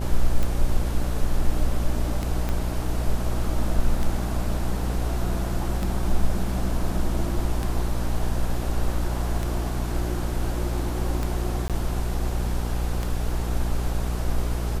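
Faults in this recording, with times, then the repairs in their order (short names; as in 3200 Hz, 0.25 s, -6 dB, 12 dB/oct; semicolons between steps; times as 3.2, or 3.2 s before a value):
buzz 60 Hz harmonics 13 -27 dBFS
tick 33 1/3 rpm
2.49 pop -14 dBFS
11.68–11.7 gap 17 ms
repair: de-click; de-hum 60 Hz, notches 13; interpolate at 11.68, 17 ms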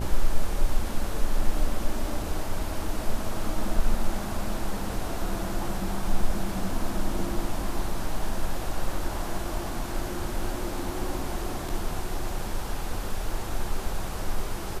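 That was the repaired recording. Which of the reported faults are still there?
2.49 pop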